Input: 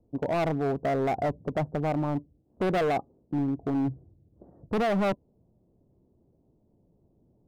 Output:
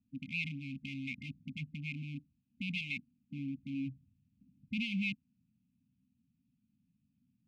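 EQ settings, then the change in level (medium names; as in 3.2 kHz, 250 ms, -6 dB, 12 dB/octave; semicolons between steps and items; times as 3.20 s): vowel filter e; brick-wall FIR band-stop 270–2100 Hz; +16.5 dB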